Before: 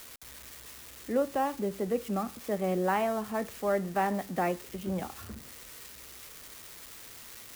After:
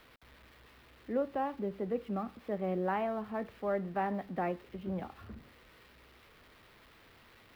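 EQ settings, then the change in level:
high-frequency loss of the air 410 metres
high-shelf EQ 5,600 Hz +9.5 dB
−3.5 dB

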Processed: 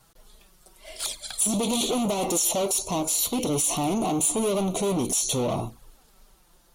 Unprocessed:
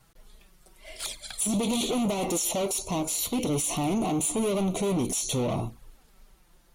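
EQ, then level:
low-shelf EQ 360 Hz −6.5 dB
parametric band 2,100 Hz −6 dB 0.9 octaves
+5.0 dB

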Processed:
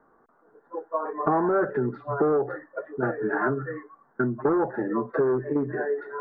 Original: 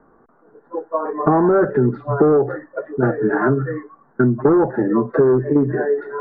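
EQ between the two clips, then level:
low-shelf EQ 410 Hz −9.5 dB
−4.0 dB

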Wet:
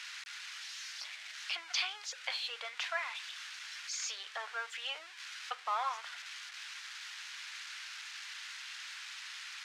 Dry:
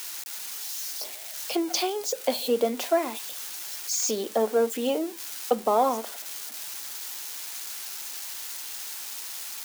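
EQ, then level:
high-pass filter 1,500 Hz 24 dB per octave
head-to-tape spacing loss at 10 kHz 34 dB
+9.5 dB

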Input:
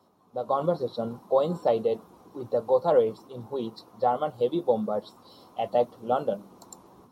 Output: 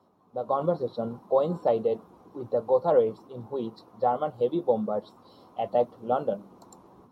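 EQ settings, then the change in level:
high-shelf EQ 3,100 Hz −10 dB
0.0 dB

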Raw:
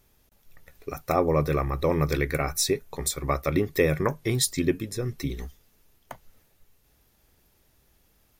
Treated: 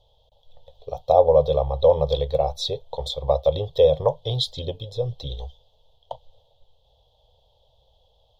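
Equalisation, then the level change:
drawn EQ curve 120 Hz 0 dB, 210 Hz −20 dB, 350 Hz −20 dB, 500 Hz +9 dB, 920 Hz +4 dB, 1,400 Hz −29 dB, 2,300 Hz −27 dB, 3,300 Hz +11 dB, 5,400 Hz −12 dB, 9,600 Hz −27 dB
+3.0 dB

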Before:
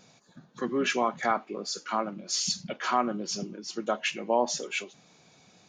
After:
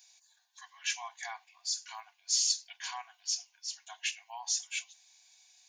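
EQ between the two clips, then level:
linear-phase brick-wall high-pass 670 Hz
Butterworth band-reject 1,300 Hz, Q 3.7
first difference
+3.5 dB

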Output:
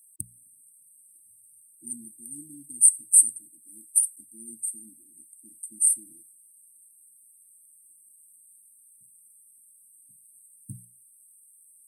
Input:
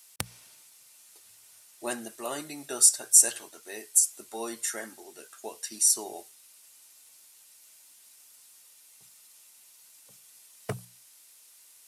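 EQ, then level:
linear-phase brick-wall band-stop 330–8,100 Hz
flat-topped bell 5,300 Hz +11.5 dB
−4.0 dB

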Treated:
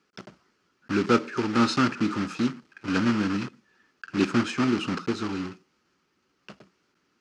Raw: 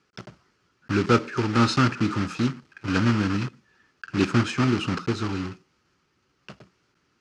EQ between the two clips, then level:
low shelf with overshoot 160 Hz −6.5 dB, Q 1.5
−2.0 dB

